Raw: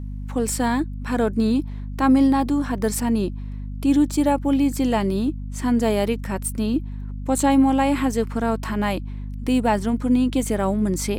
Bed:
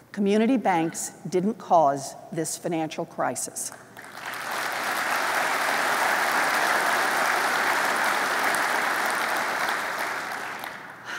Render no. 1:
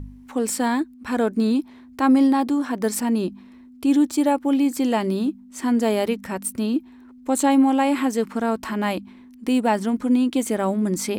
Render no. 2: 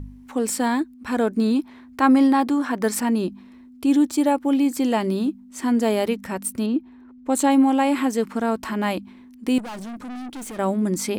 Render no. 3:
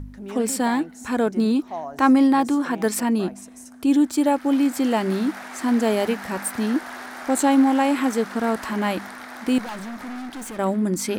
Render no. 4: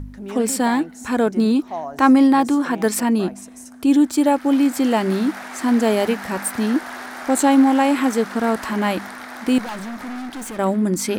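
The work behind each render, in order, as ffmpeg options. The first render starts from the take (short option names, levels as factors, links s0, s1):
-af "bandreject=f=50:t=h:w=4,bandreject=f=100:t=h:w=4,bandreject=f=150:t=h:w=4,bandreject=f=200:t=h:w=4"
-filter_complex "[0:a]asettb=1/sr,asplit=3[s0][s1][s2];[s0]atrim=end=1.564[s3];[s1]atrim=start=1.56:end=3.11,asetpts=PTS-STARTPTS,afade=t=in:d=0.004:c=qsin,afade=t=out:st=1.546:d=0.004:c=qsin,equalizer=f=1500:t=o:w=1.8:g=4.5[s4];[s2]atrim=start=3.106[s5];[s3][s4]acrossfade=d=0.004:c1=hsin:c2=qsin[s6];[s6][s5]acrossfade=d=0.004:c1=qsin:c2=hsin,asettb=1/sr,asplit=3[s7][s8][s9];[s7]atrim=end=6.664[s10];[s8]atrim=start=6.66:end=7.3,asetpts=PTS-STARTPTS,afade=t=in:d=0.004:c=qsin,afade=t=out:st=0.636:d=0.004:c=qsin,lowpass=f=2100:p=1[s11];[s9]atrim=start=7.296[s12];[s10][s11]acrossfade=d=0.004:c1=hsin:c2=qsin[s13];[s13][s12]acrossfade=d=0.004:c1=qsin:c2=hsin,asettb=1/sr,asplit=3[s14][s15][s16];[s14]atrim=end=9.584[s17];[s15]atrim=start=9.58:end=10.59,asetpts=PTS-STARTPTS,afade=t=in:d=0.004:c=qsin,afade=t=out:st=1.006:d=0.004:c=qsin,aeval=exprs='(tanh(39.8*val(0)+0.2)-tanh(0.2))/39.8':c=same[s18];[s16]atrim=start=10.586[s19];[s17][s18]acrossfade=d=0.004:c1=hsin:c2=qsin[s20];[s20][s19]acrossfade=d=0.004:c1=qsin:c2=hsin"
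-filter_complex "[1:a]volume=0.224[s0];[0:a][s0]amix=inputs=2:normalize=0"
-af "volume=1.41"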